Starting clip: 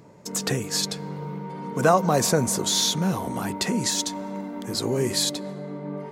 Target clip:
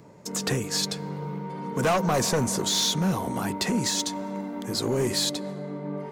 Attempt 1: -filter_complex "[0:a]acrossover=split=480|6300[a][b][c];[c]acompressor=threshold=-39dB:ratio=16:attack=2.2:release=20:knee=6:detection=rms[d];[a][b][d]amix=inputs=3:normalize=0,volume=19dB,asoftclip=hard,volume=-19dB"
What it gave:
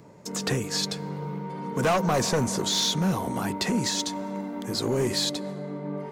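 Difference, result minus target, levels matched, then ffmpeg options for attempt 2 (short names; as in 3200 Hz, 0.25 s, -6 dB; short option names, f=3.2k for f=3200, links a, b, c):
compressor: peak gain reduction +7.5 dB
-filter_complex "[0:a]acrossover=split=480|6300[a][b][c];[c]acompressor=threshold=-31dB:ratio=16:attack=2.2:release=20:knee=6:detection=rms[d];[a][b][d]amix=inputs=3:normalize=0,volume=19dB,asoftclip=hard,volume=-19dB"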